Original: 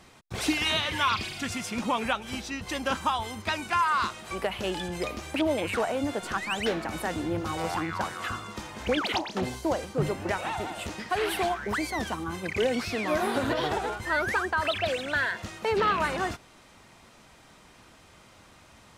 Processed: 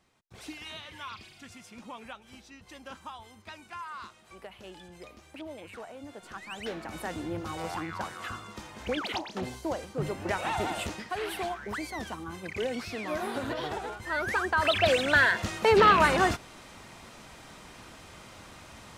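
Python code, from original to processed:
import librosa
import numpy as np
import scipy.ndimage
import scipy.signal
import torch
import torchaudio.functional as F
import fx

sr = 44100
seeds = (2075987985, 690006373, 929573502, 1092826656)

y = fx.gain(x, sr, db=fx.line((5.99, -16.0), (7.04, -5.0), (10.02, -5.0), (10.74, 4.0), (11.12, -6.0), (14.01, -6.0), (14.92, 5.5)))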